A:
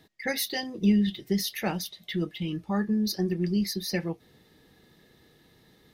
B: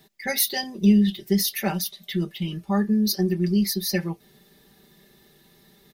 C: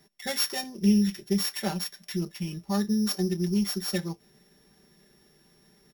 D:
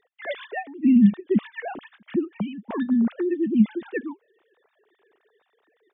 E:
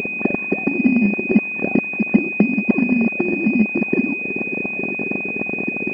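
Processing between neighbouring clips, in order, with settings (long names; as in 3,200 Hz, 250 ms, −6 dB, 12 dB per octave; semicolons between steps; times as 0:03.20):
high-shelf EQ 8,200 Hz +11.5 dB; comb filter 5.1 ms, depth 85%
samples sorted by size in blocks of 8 samples; level −4.5 dB
three sine waves on the formant tracks; level +4.5 dB
compressor on every frequency bin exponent 0.2; transient designer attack +8 dB, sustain −6 dB; switching amplifier with a slow clock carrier 2,500 Hz; level −6 dB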